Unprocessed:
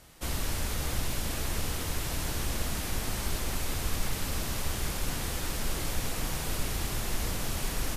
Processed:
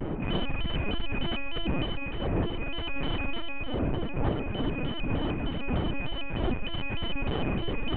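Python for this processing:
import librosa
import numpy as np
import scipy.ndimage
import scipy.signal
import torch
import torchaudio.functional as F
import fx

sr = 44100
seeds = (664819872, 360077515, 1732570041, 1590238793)

y = np.r_[np.sort(x[:len(x) // 16 * 16].reshape(-1, 16), axis=1).ravel(), x[len(x) // 16 * 16:]]
y = fx.dmg_wind(y, sr, seeds[0], corner_hz=320.0, level_db=-28.0)
y = scipy.signal.sosfilt(scipy.signal.butter(4, 2800.0, 'lowpass', fs=sr, output='sos'), y)
y = fx.hum_notches(y, sr, base_hz=60, count=7)
y = fx.rider(y, sr, range_db=5, speed_s=0.5)
y = 10.0 ** (-21.5 / 20.0) * np.tanh(y / 10.0 ** (-21.5 / 20.0))
y = fx.lpc_vocoder(y, sr, seeds[1], excitation='pitch_kept', order=16)
y = fx.vibrato_shape(y, sr, shape='square', rate_hz=3.3, depth_cents=160.0)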